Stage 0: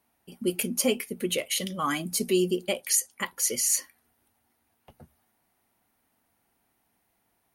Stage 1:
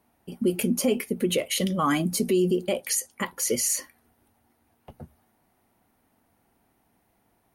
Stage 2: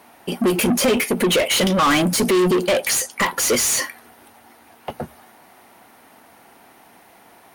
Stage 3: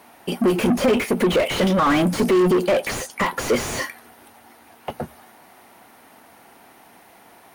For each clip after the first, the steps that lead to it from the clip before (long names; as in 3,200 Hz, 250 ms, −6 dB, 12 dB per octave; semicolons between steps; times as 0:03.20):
tilt shelving filter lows +4.5 dB, about 1,200 Hz; brickwall limiter −19 dBFS, peak gain reduction 8 dB; level +4.5 dB
mid-hump overdrive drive 26 dB, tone 5,900 Hz, clips at −14 dBFS; level +3.5 dB
slew-rate limiting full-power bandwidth 180 Hz